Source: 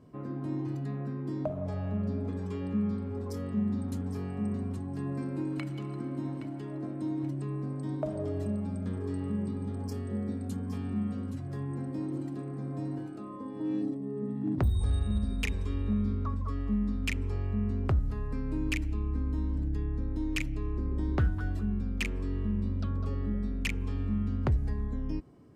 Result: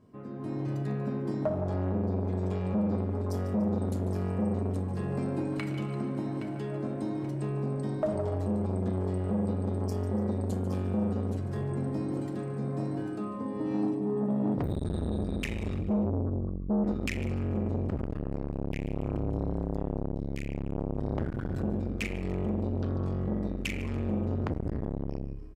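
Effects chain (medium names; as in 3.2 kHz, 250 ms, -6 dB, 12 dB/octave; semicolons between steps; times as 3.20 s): 15.79–16.84 s: spectral contrast enhancement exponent 3.6; reverberation RT60 0.95 s, pre-delay 5 ms, DRR 4.5 dB; peak limiter -24 dBFS, peak gain reduction 7.5 dB; level rider gain up to 9 dB; feedback delay 146 ms, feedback 41%, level -14 dB; transformer saturation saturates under 380 Hz; trim -4 dB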